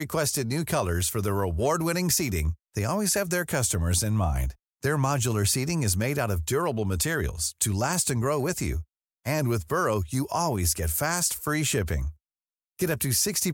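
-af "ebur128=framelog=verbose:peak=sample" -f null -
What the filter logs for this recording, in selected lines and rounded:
Integrated loudness:
  I:         -26.1 LUFS
  Threshold: -36.3 LUFS
Loudness range:
  LRA:         1.4 LU
  Threshold: -46.3 LUFS
  LRA low:   -27.1 LUFS
  LRA high:  -25.6 LUFS
Sample peak:
  Peak:      -10.1 dBFS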